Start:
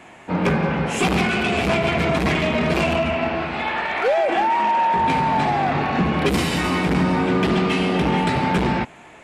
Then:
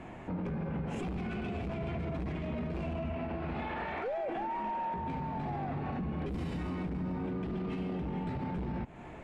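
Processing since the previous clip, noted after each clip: tilt -3.5 dB/oct; compressor 4:1, threshold -23 dBFS, peak gain reduction 13.5 dB; limiter -24 dBFS, peak gain reduction 10 dB; gain -5 dB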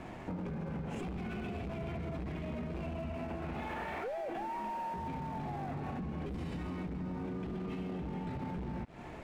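compressor, threshold -37 dBFS, peak gain reduction 5 dB; crossover distortion -59 dBFS; gain +2 dB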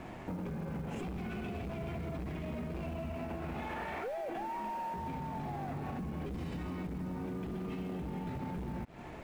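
short-mantissa float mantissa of 4-bit

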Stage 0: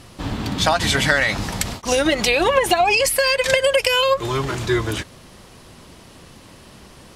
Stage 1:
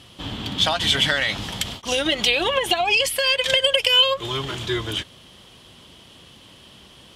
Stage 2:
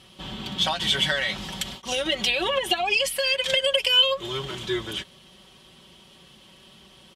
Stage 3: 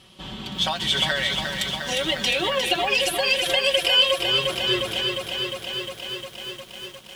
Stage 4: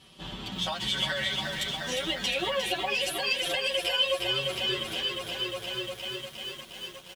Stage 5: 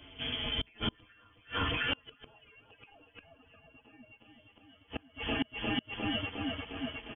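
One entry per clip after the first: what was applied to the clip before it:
HPF 47 Hz; bell 3200 Hz +15 dB 0.42 oct; gain -6 dB
comb 5.3 ms; gain -5.5 dB
lo-fi delay 0.355 s, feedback 80%, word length 8-bit, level -5.5 dB
compressor 1.5:1, threshold -29 dBFS, peak gain reduction 6 dB; endless flanger 9.9 ms +0.61 Hz
inverted band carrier 3300 Hz; flipped gate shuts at -23 dBFS, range -33 dB; gain +3 dB

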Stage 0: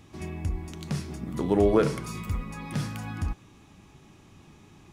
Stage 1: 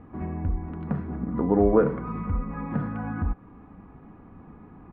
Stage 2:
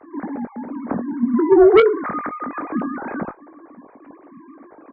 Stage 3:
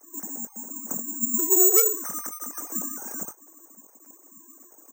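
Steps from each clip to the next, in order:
LPF 1500 Hz 24 dB/oct; comb 4.1 ms, depth 42%; in parallel at 0 dB: compressor, threshold -34 dBFS, peak gain reduction 17.5 dB
sine-wave speech; added harmonics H 5 -9 dB, 7 -23 dB, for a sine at -6 dBFS; doubler 21 ms -10.5 dB; gain +2.5 dB
careless resampling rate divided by 6×, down none, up zero stuff; gain -15 dB

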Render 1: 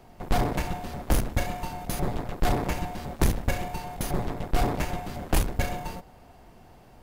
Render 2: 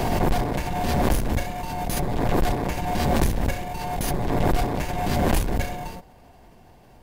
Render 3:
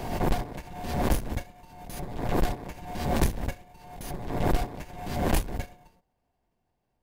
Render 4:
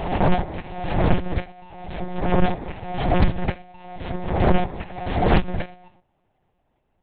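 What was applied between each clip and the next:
notch 1300 Hz, Q 9.1; backwards sustainer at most 21 dB/s
upward expander 2.5:1, over -34 dBFS
monotone LPC vocoder at 8 kHz 180 Hz; Doppler distortion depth 0.37 ms; gain +7.5 dB

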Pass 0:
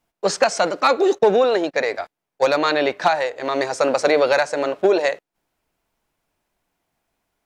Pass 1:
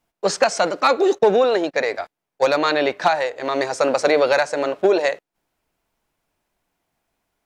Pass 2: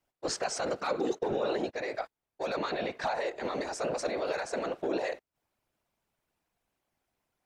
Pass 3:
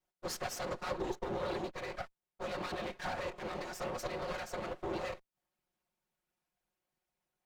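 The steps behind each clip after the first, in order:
nothing audible
limiter -16 dBFS, peak gain reduction 11 dB; whisperiser; gain -7.5 dB
minimum comb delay 5.5 ms; gain -5 dB

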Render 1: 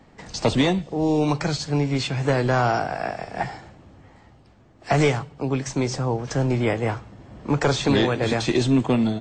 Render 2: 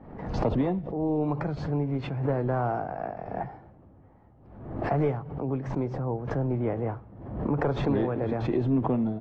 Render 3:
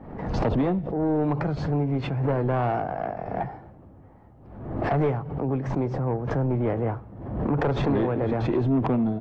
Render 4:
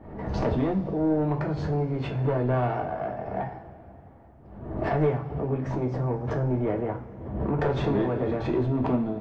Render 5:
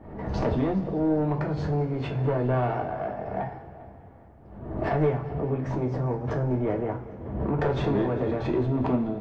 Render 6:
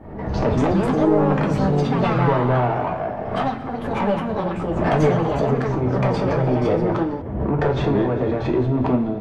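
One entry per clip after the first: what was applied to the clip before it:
LPF 1000 Hz 12 dB/oct; backwards sustainer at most 60 dB/s; gain -6 dB
soft clip -22 dBFS, distortion -16 dB; gain +5 dB
two-slope reverb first 0.27 s, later 3.3 s, from -21 dB, DRR 1.5 dB; gain -4 dB
multi-head echo 0.201 s, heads first and second, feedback 47%, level -22 dB
echoes that change speed 0.321 s, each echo +5 st, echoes 2; gain +5.5 dB

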